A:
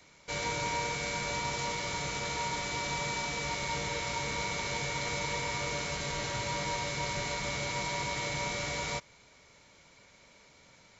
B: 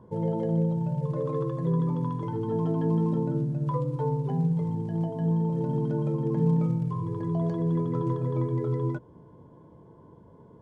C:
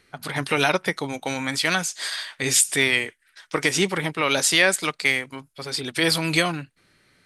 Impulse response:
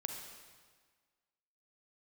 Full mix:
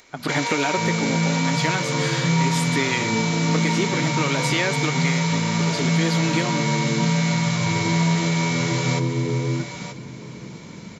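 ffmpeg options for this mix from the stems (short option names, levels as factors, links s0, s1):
-filter_complex "[0:a]highpass=480,acompressor=mode=upward:threshold=0.00398:ratio=2.5,volume=1,asplit=2[s0][s1];[s1]volume=0.355[s2];[1:a]equalizer=f=200:t=o:w=0.84:g=13,adelay=650,volume=0.841,asplit=2[s3][s4];[s4]volume=0.0631[s5];[2:a]equalizer=f=290:w=1.5:g=7,volume=0.944[s6];[s3][s6]amix=inputs=2:normalize=0,equalizer=f=9700:w=0.73:g=-15,acompressor=threshold=0.0398:ratio=6,volume=1[s7];[s2][s5]amix=inputs=2:normalize=0,aecho=0:1:931:1[s8];[s0][s7][s8]amix=inputs=3:normalize=0,dynaudnorm=f=110:g=3:m=2.51"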